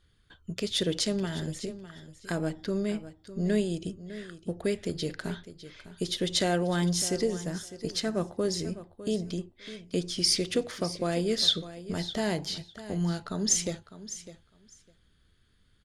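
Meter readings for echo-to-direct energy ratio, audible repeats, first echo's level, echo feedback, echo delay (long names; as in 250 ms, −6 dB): −14.5 dB, 2, −14.5 dB, 15%, 604 ms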